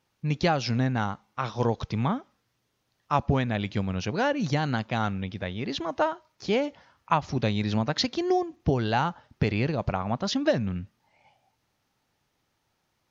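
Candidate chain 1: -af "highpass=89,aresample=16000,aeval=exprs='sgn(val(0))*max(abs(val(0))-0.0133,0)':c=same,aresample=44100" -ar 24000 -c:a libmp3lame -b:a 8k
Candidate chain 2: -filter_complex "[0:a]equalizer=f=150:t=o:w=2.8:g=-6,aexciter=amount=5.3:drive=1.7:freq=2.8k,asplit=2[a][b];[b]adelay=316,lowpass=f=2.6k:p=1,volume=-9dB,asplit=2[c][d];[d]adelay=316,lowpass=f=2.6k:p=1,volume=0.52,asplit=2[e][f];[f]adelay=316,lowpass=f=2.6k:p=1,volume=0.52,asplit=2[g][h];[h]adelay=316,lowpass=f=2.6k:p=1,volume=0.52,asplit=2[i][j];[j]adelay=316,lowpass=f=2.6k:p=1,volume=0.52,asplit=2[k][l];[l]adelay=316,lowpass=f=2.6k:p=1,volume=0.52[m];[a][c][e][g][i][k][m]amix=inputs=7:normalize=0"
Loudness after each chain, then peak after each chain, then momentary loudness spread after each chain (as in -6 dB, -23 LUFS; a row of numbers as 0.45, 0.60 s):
-30.5, -26.0 LUFS; -9.5, -2.0 dBFS; 9, 13 LU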